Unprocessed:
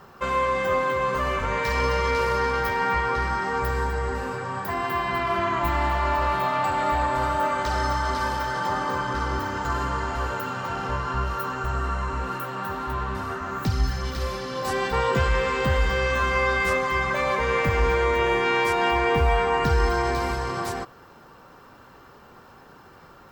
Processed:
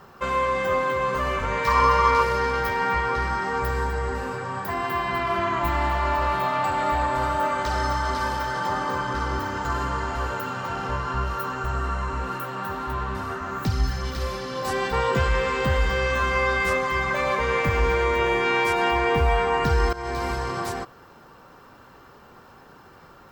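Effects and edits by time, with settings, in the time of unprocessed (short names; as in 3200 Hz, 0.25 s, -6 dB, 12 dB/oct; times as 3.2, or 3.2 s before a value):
1.67–2.23 bell 1100 Hz +15 dB 0.41 oct
16.81–18.88 thinning echo 0.106 s, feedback 28%, level -14 dB
19.93–20.41 fade in equal-power, from -16.5 dB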